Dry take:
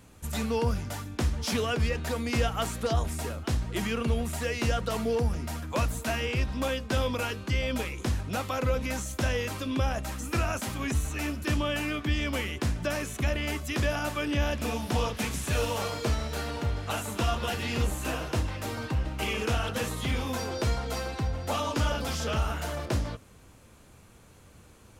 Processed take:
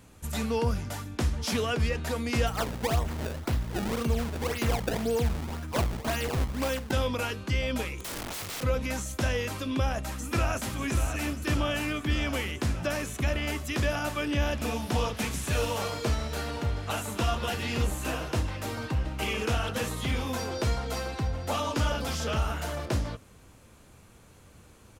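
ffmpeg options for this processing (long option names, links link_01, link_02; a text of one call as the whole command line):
ffmpeg -i in.wav -filter_complex "[0:a]asplit=3[link_01][link_02][link_03];[link_01]afade=type=out:start_time=2.46:duration=0.02[link_04];[link_02]acrusher=samples=24:mix=1:aa=0.000001:lfo=1:lforange=38.4:lforate=1.9,afade=type=in:start_time=2.46:duration=0.02,afade=type=out:start_time=6.91:duration=0.02[link_05];[link_03]afade=type=in:start_time=6.91:duration=0.02[link_06];[link_04][link_05][link_06]amix=inputs=3:normalize=0,asplit=3[link_07][link_08][link_09];[link_07]afade=type=out:start_time=7.98:duration=0.02[link_10];[link_08]aeval=exprs='(mod(37.6*val(0)+1,2)-1)/37.6':channel_layout=same,afade=type=in:start_time=7.98:duration=0.02,afade=type=out:start_time=8.62:duration=0.02[link_11];[link_09]afade=type=in:start_time=8.62:duration=0.02[link_12];[link_10][link_11][link_12]amix=inputs=3:normalize=0,asplit=2[link_13][link_14];[link_14]afade=type=in:start_time=9.72:duration=0.01,afade=type=out:start_time=10.74:duration=0.01,aecho=0:1:590|1180|1770|2360|2950|3540|4130|4720|5310|5900|6490|7080:0.398107|0.29858|0.223935|0.167951|0.125964|0.0944727|0.0708545|0.0531409|0.0398557|0.0298918|0.0224188|0.0168141[link_15];[link_13][link_15]amix=inputs=2:normalize=0" out.wav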